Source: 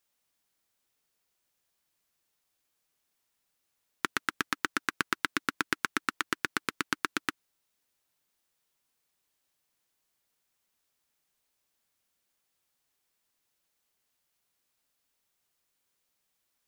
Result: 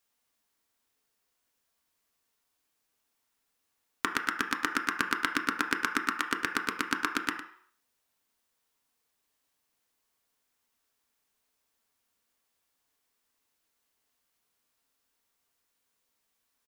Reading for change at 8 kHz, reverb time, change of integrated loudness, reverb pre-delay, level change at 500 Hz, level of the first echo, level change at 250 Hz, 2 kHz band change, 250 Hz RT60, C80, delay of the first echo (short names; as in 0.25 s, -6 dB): 0.0 dB, 0.60 s, +2.0 dB, 3 ms, +1.0 dB, -12.5 dB, +2.5 dB, +2.0 dB, 0.45 s, 9.5 dB, 0.106 s